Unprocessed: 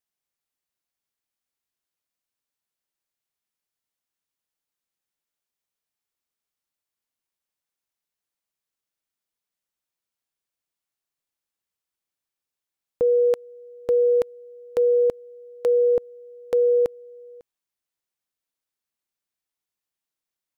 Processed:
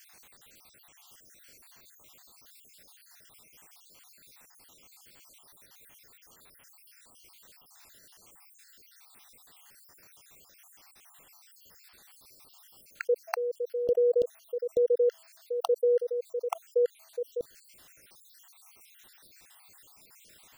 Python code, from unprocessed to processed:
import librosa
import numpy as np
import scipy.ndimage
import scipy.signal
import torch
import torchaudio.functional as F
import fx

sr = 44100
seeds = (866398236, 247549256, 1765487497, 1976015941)

y = fx.spec_dropout(x, sr, seeds[0], share_pct=65)
y = fx.env_flatten(y, sr, amount_pct=70)
y = y * librosa.db_to_amplitude(-4.5)